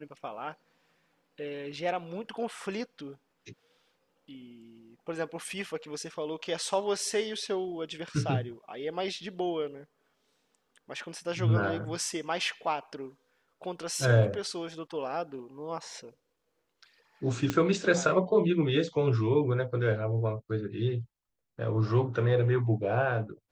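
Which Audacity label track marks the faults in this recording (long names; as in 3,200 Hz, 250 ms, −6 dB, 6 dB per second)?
17.500000	17.500000	click −14 dBFS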